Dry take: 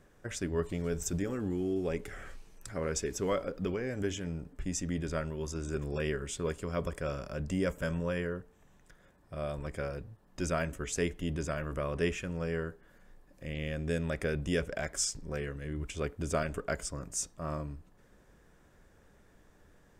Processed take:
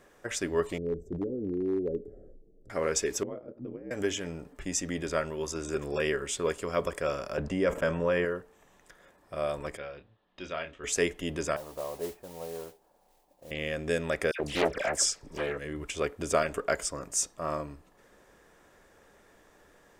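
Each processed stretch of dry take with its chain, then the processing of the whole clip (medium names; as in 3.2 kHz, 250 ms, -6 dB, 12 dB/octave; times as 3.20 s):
0.78–2.70 s: inverse Chebyshev low-pass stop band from 950 Hz + hard clipper -26.5 dBFS
3.23–3.91 s: band-pass filter 200 Hz, Q 1.8 + upward compressor, threshold -41 dBFS + ring modulator 60 Hz
7.37–8.25 s: gate -40 dBFS, range -15 dB + low-pass 2.2 kHz 6 dB/octave + level flattener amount 70%
9.77–10.84 s: four-pole ladder low-pass 3.9 kHz, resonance 60% + doubling 27 ms -9 dB
11.56–13.51 s: four-pole ladder low-pass 920 Hz, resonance 65% + modulation noise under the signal 14 dB
14.31–15.58 s: upward compressor, threshold -53 dBFS + phase dispersion lows, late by 83 ms, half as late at 1.9 kHz + loudspeaker Doppler distortion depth 0.88 ms
whole clip: tone controls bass -13 dB, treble -1 dB; band-stop 1.5 kHz, Q 21; trim +7 dB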